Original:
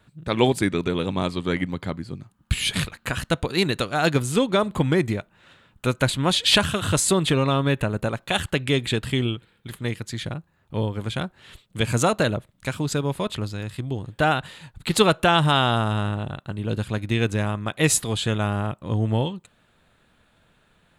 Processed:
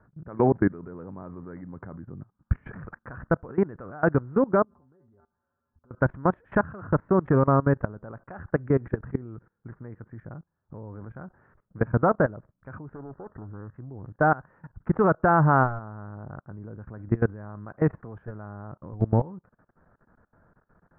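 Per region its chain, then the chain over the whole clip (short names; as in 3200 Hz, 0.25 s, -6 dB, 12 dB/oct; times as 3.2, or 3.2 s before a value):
4.63–5.91 LPF 1500 Hz 24 dB/oct + resonator 80 Hz, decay 0.16 s, harmonics odd, mix 90% + compressor, threshold -45 dBFS
12.95–13.74 rippled Chebyshev low-pass 1900 Hz, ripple 3 dB + Doppler distortion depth 0.61 ms
whole clip: steep low-pass 1600 Hz 48 dB/oct; level quantiser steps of 21 dB; gain +2.5 dB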